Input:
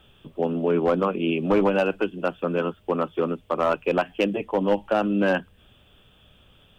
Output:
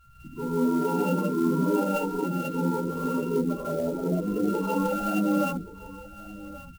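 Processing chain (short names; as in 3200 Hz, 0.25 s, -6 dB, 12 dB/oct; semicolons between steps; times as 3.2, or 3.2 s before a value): sample sorter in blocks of 32 samples; 3.09–4.48 treble ducked by the level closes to 370 Hz, closed at -17.5 dBFS; in parallel at -2.5 dB: limiter -22 dBFS, peak gain reduction 11 dB; on the sum: soft clip -24 dBFS, distortion -7 dB; loudest bins only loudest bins 8; on a send: echo 1.127 s -17.5 dB; on the sum: non-linear reverb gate 0.22 s rising, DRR -7.5 dB; clock jitter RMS 0.024 ms; gain -3.5 dB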